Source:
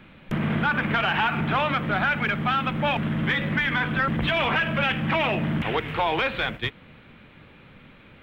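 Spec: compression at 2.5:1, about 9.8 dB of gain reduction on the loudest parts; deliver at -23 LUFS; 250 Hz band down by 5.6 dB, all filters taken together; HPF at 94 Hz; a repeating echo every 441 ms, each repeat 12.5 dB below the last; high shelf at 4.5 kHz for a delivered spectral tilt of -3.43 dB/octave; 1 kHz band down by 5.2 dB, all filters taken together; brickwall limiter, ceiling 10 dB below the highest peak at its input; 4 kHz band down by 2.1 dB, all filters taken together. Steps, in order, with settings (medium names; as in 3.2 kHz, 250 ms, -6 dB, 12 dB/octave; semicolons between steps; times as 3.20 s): high-pass 94 Hz; peaking EQ 250 Hz -7.5 dB; peaking EQ 1 kHz -7 dB; peaking EQ 4 kHz -5.5 dB; treble shelf 4.5 kHz +6.5 dB; compression 2.5:1, threshold -38 dBFS; peak limiter -28.5 dBFS; feedback delay 441 ms, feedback 24%, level -12.5 dB; trim +14 dB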